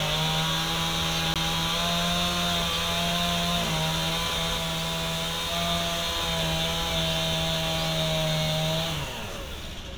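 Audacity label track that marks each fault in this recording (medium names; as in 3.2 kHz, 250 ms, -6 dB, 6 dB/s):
1.340000	1.360000	dropout 17 ms
4.560000	5.530000	clipped -25.5 dBFS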